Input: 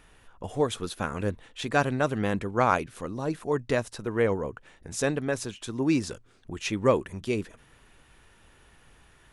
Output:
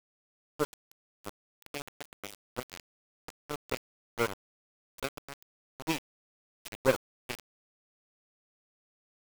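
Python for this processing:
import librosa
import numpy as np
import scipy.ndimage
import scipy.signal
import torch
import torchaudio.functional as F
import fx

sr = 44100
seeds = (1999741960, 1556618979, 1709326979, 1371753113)

y = fx.brickwall_bandstop(x, sr, low_hz=590.0, high_hz=1900.0)
y = fx.low_shelf(y, sr, hz=190.0, db=-8.5)
y = fx.echo_stepped(y, sr, ms=780, hz=3400.0, octaves=0.7, feedback_pct=70, wet_db=-8.0)
y = fx.cheby_harmonics(y, sr, harmonics=(3, 6, 7), levels_db=(-18, -26, -17), full_scale_db=-11.5)
y = fx.quant_dither(y, sr, seeds[0], bits=6, dither='none')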